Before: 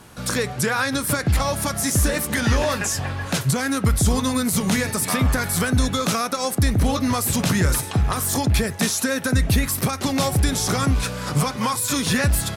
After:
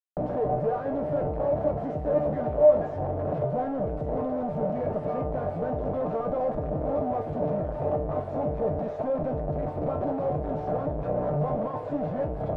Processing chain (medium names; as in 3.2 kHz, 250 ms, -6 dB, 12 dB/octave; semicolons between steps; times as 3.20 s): 1.19–1.88 s: compression, threshold -21 dBFS, peak gain reduction 6.5 dB; Schmitt trigger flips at -32.5 dBFS; resonant low-pass 630 Hz, resonance Q 5; feedback comb 150 Hz, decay 0.31 s, harmonics all, mix 80%